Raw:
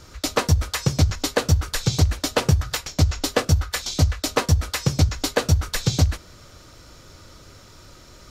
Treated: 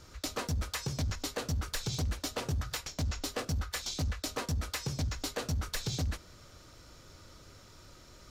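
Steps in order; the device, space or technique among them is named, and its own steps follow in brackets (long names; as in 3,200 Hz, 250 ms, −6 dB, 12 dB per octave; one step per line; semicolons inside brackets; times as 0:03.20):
limiter into clipper (brickwall limiter −14 dBFS, peak gain reduction 7 dB; hard clipping −20 dBFS, distortion −13 dB)
level −8 dB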